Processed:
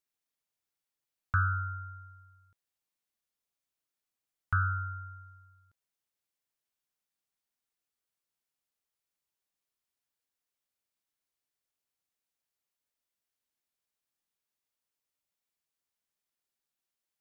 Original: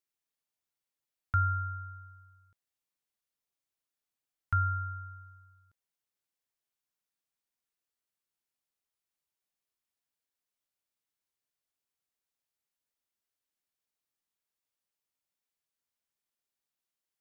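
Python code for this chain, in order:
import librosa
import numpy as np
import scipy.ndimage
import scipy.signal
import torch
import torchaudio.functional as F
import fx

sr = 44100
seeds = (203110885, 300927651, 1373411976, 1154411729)

y = fx.doppler_dist(x, sr, depth_ms=0.22)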